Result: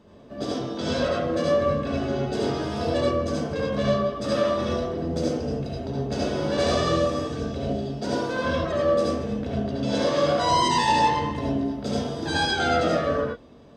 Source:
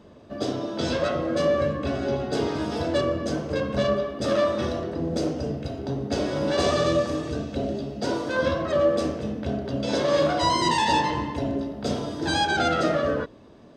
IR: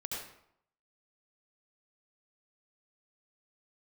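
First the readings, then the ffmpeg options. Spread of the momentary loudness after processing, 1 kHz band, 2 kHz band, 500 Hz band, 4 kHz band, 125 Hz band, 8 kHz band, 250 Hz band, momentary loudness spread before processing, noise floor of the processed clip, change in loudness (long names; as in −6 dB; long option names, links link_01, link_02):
8 LU, +1.5 dB, 0.0 dB, 0.0 dB, +0.5 dB, +1.5 dB, 0.0 dB, +0.5 dB, 8 LU, −47 dBFS, +0.5 dB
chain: -filter_complex "[1:a]atrim=start_sample=2205,afade=type=out:start_time=0.16:duration=0.01,atrim=end_sample=7497[link_01];[0:a][link_01]afir=irnorm=-1:irlink=0"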